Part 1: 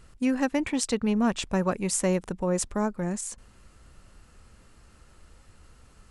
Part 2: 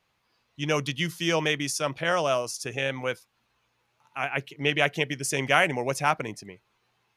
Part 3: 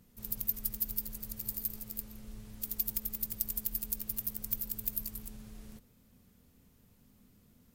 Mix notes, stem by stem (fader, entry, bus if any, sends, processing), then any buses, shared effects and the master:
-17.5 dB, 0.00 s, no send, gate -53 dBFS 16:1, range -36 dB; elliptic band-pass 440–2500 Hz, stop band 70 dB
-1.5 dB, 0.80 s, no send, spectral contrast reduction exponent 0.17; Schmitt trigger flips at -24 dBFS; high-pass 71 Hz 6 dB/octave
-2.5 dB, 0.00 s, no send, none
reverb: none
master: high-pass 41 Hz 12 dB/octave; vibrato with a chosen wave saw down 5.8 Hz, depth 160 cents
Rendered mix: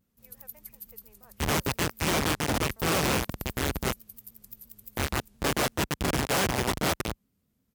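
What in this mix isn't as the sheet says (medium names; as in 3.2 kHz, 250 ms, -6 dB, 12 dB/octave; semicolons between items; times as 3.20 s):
stem 1 -17.5 dB -> -28.0 dB; stem 2 -1.5 dB -> +5.0 dB; stem 3 -2.5 dB -> -11.0 dB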